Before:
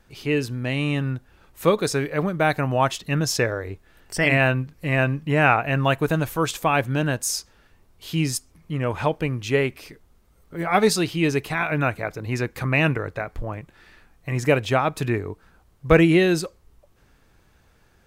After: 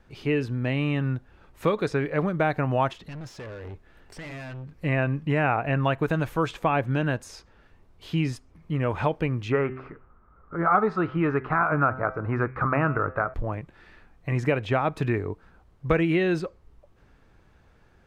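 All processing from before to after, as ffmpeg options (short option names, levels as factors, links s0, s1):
-filter_complex "[0:a]asettb=1/sr,asplit=3[s0][s1][s2];[s0]atrim=end=2.934[s3];[s1]atrim=start=2.93:end=4.78,asetpts=PTS-STARTPTS,afade=t=in:d=0.004:c=qsin,afade=t=out:st=1.846:d=0.004:c=qsin,acompressor=threshold=0.0251:ratio=2.5:attack=3.2:release=140:knee=1:detection=peak,volume=63.1,asoftclip=hard,volume=0.0158[s4];[s2]atrim=start=4.776[s5];[s3][s4]acrossfade=d=0.004:c1=hsin:c2=qsin[s6];[s6][s5]acrossfade=d=0.004:c1=qsin:c2=hsin,asettb=1/sr,asplit=3[s7][s8][s9];[s7]atrim=end=9.524[s10];[s8]atrim=start=9.52:end=13.34,asetpts=PTS-STARTPTS,afade=t=in:d=0.004:c=qsin,afade=t=out:st=3.816:d=0.004:c=qsin,lowpass=f=1300:t=q:w=6.3,bandreject=f=129.5:t=h:w=4,bandreject=f=259:t=h:w=4,bandreject=f=388.5:t=h:w=4,bandreject=f=518:t=h:w=4,bandreject=f=647.5:t=h:w=4,bandreject=f=777:t=h:w=4,bandreject=f=906.5:t=h:w=4,bandreject=f=1036:t=h:w=4,bandreject=f=1165.5:t=h:w=4,bandreject=f=1295:t=h:w=4,bandreject=f=1424.5:t=h:w=4,bandreject=f=1554:t=h:w=4,bandreject=f=1683.5:t=h:w=4,bandreject=f=1813:t=h:w=4,bandreject=f=1942.5:t=h:w=4,bandreject=f=2072:t=h:w=4,bandreject=f=2201.5:t=h:w=4,bandreject=f=2331:t=h:w=4,bandreject=f=2460.5:t=h:w=4,bandreject=f=2590:t=h:w=4,bandreject=f=2719.5:t=h:w=4,bandreject=f=2849:t=h:w=4,bandreject=f=2978.5:t=h:w=4,bandreject=f=3108:t=h:w=4,bandreject=f=3237.5:t=h:w=4[s11];[s9]atrim=start=13.336[s12];[s10][s11]acrossfade=d=0.004:c1=hsin:c2=qsin[s13];[s13][s12]acrossfade=d=0.004:c1=qsin:c2=hsin,aemphasis=mode=reproduction:type=75fm,acrossover=split=1100|3400[s14][s15][s16];[s14]acompressor=threshold=0.0891:ratio=4[s17];[s15]acompressor=threshold=0.0355:ratio=4[s18];[s16]acompressor=threshold=0.00316:ratio=4[s19];[s17][s18][s19]amix=inputs=3:normalize=0,highshelf=f=11000:g=4"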